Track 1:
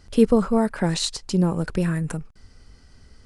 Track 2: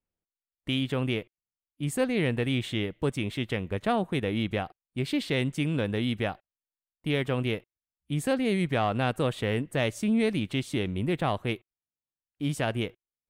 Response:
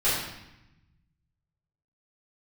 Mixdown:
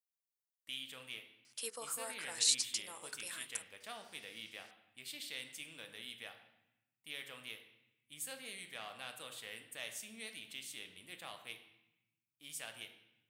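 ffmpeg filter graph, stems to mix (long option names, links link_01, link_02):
-filter_complex "[0:a]highpass=540,adelay=1450,volume=-1dB[link_01];[1:a]volume=-4.5dB,asplit=2[link_02][link_03];[link_03]volume=-19dB[link_04];[2:a]atrim=start_sample=2205[link_05];[link_04][link_05]afir=irnorm=-1:irlink=0[link_06];[link_01][link_02][link_06]amix=inputs=3:normalize=0,aderivative,bandreject=frequency=370:width=12,bandreject=frequency=69.03:width_type=h:width=4,bandreject=frequency=138.06:width_type=h:width=4,bandreject=frequency=207.09:width_type=h:width=4,bandreject=frequency=276.12:width_type=h:width=4,bandreject=frequency=345.15:width_type=h:width=4,bandreject=frequency=414.18:width_type=h:width=4,bandreject=frequency=483.21:width_type=h:width=4,bandreject=frequency=552.24:width_type=h:width=4,bandreject=frequency=621.27:width_type=h:width=4,bandreject=frequency=690.3:width_type=h:width=4,bandreject=frequency=759.33:width_type=h:width=4,bandreject=frequency=828.36:width_type=h:width=4,bandreject=frequency=897.39:width_type=h:width=4,bandreject=frequency=966.42:width_type=h:width=4,bandreject=frequency=1035.45:width_type=h:width=4,bandreject=frequency=1104.48:width_type=h:width=4,bandreject=frequency=1173.51:width_type=h:width=4,bandreject=frequency=1242.54:width_type=h:width=4,bandreject=frequency=1311.57:width_type=h:width=4,bandreject=frequency=1380.6:width_type=h:width=4,bandreject=frequency=1449.63:width_type=h:width=4,bandreject=frequency=1518.66:width_type=h:width=4,bandreject=frequency=1587.69:width_type=h:width=4,bandreject=frequency=1656.72:width_type=h:width=4,bandreject=frequency=1725.75:width_type=h:width=4,bandreject=frequency=1794.78:width_type=h:width=4"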